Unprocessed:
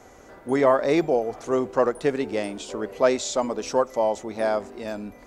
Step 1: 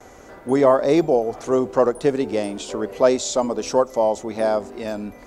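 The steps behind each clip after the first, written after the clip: gate with hold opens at -44 dBFS; dynamic EQ 2000 Hz, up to -7 dB, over -40 dBFS, Q 0.96; gain +4.5 dB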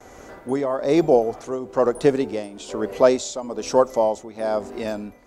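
tremolo triangle 1.1 Hz, depth 80%; gain +2.5 dB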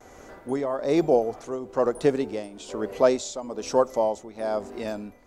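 added noise brown -60 dBFS; gain -4 dB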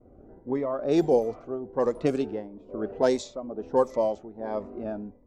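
low-pass opened by the level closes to 380 Hz, open at -16.5 dBFS; cascading phaser rising 1.5 Hz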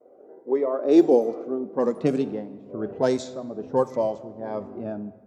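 high-pass sweep 490 Hz -> 120 Hz, 0.13–2.76; reverb RT60 1.7 s, pre-delay 11 ms, DRR 14 dB

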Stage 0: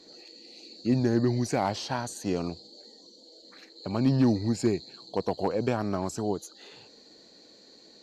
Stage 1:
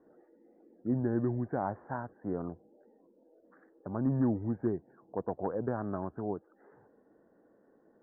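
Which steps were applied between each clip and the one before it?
steep low-pass 1700 Hz 72 dB/oct; gain -6 dB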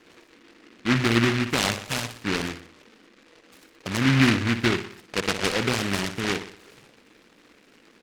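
on a send: feedback echo 60 ms, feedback 50%, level -10 dB; on the sum: noise-modulated delay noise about 1800 Hz, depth 0.33 ms; gain +8.5 dB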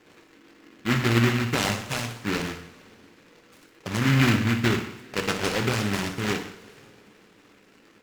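in parallel at -8 dB: sample-rate reducer 4900 Hz, jitter 0%; on the sum: two-slope reverb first 0.55 s, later 3.9 s, from -22 dB, DRR 5.5 dB; gain -4 dB

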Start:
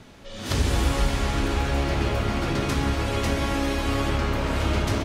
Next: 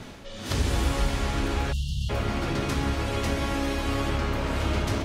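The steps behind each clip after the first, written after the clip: spectral delete 1.72–2.09, 200–2700 Hz; reverse; upward compressor, threshold -28 dBFS; reverse; gain -2.5 dB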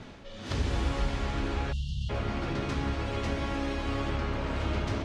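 air absorption 85 m; gain -4 dB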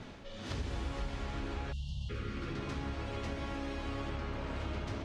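spectral repair 1.8–2.67, 550–1100 Hz both; compressor 2:1, threshold -37 dBFS, peak gain reduction 7.5 dB; gain -2 dB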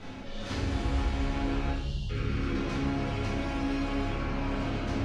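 notches 60/120/180/240/300/360/420 Hz; shoebox room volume 200 m³, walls mixed, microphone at 2 m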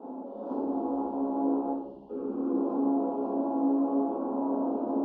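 elliptic band-pass 250–940 Hz, stop band 40 dB; gain +6 dB

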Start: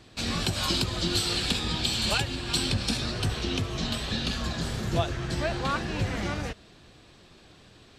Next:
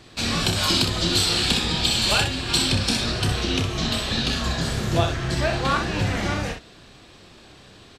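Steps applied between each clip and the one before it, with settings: low shelf 340 Hz -2.5 dB; on a send: early reflections 30 ms -7.5 dB, 62 ms -7 dB; on the sum: gain +5.5 dB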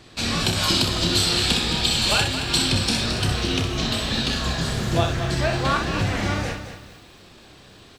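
lo-fi delay 0.22 s, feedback 35%, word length 8-bit, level -10 dB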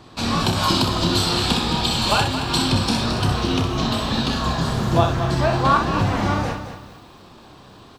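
graphic EQ 125/250/1000/2000/8000 Hz +3/+4/+10/-5/-4 dB

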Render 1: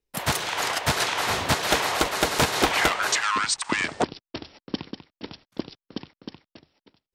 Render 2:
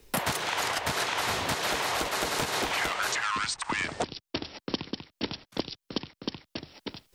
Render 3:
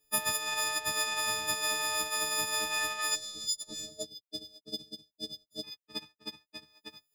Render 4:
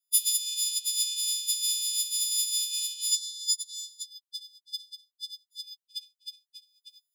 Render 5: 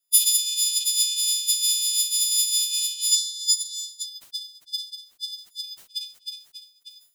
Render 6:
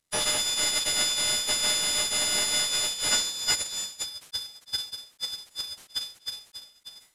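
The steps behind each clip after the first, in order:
limiter -15 dBFS, peak gain reduction 7.5 dB; three-band squash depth 100%; gain -3.5 dB
frequency quantiser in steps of 6 st; power-law curve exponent 1.4; spectral gain 3.15–5.64, 710–3400 Hz -23 dB; gain -7.5 dB
rippled Chebyshev high-pass 2900 Hz, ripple 3 dB; three-band expander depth 40%; gain +7 dB
sustainer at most 140 dB/s; gain +6 dB
CVSD 64 kbps

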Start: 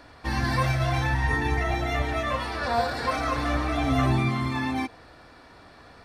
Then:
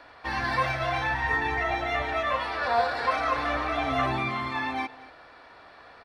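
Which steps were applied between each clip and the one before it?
three-band isolator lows -13 dB, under 440 Hz, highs -14 dB, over 4200 Hz; echo 0.233 s -20 dB; gain +2 dB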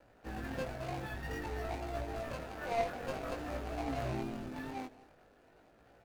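median filter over 41 samples; vibrato 2.4 Hz 40 cents; chorus 0.5 Hz, delay 17.5 ms, depth 3.1 ms; gain -2.5 dB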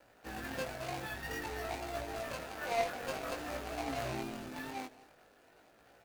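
tilt +2 dB/oct; gain +1.5 dB

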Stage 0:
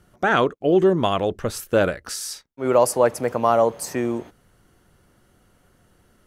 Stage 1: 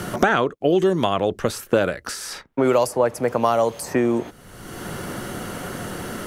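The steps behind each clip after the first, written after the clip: three-band squash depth 100%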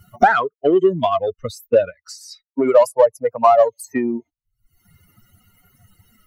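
per-bin expansion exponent 3; bell 720 Hz +14 dB 2.2 oct; in parallel at -7 dB: soft clip -15.5 dBFS, distortion -7 dB; on the sum: gain -2.5 dB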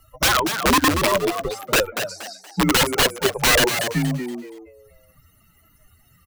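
wrapped overs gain 10.5 dB; frequency shift -88 Hz; frequency-shifting echo 0.236 s, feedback 32%, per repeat +93 Hz, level -8 dB; gain -1 dB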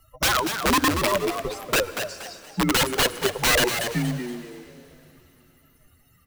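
reverb RT60 3.4 s, pre-delay 75 ms, DRR 16.5 dB; gain -3.5 dB

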